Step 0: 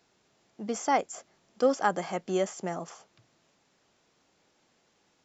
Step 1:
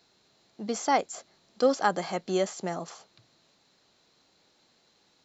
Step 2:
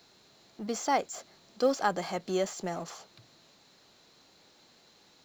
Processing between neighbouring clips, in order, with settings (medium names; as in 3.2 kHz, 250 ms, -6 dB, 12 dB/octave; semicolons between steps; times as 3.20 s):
peaking EQ 4.1 kHz +13 dB 0.28 oct; trim +1 dB
companding laws mixed up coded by mu; trim -3.5 dB